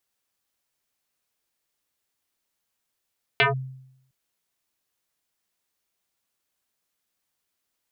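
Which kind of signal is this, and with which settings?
two-operator FM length 0.71 s, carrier 131 Hz, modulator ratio 4.23, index 5.8, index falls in 0.14 s linear, decay 0.78 s, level −13.5 dB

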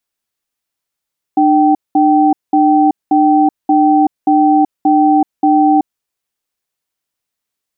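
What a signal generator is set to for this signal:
tone pair in a cadence 301 Hz, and 774 Hz, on 0.38 s, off 0.20 s, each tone −9.5 dBFS 4.44 s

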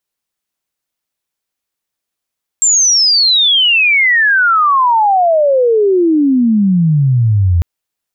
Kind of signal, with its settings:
glide logarithmic 7,500 Hz → 82 Hz −7 dBFS → −7.5 dBFS 5.00 s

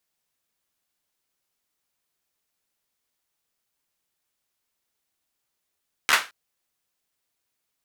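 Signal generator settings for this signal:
synth clap length 0.22 s, apart 13 ms, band 1,600 Hz, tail 0.27 s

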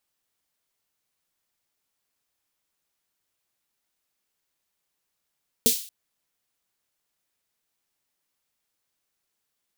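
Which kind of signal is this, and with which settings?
synth snare length 0.23 s, tones 240 Hz, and 450 Hz, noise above 3,100 Hz, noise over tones 2 dB, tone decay 0.12 s, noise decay 0.45 s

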